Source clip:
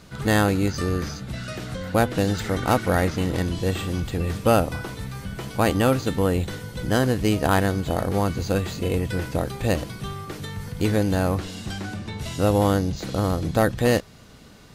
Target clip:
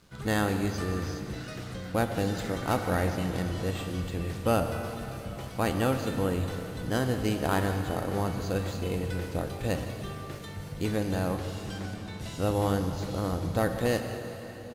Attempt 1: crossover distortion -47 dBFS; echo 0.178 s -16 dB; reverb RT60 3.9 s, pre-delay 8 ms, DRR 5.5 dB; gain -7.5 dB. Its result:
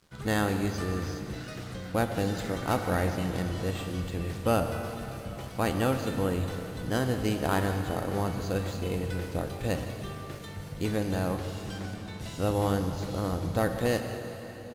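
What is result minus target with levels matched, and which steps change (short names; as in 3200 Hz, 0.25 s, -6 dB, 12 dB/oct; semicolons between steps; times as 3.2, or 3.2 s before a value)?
crossover distortion: distortion +6 dB
change: crossover distortion -53 dBFS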